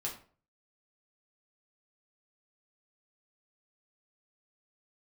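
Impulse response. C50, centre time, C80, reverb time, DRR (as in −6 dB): 8.5 dB, 22 ms, 13.5 dB, 0.45 s, −3.0 dB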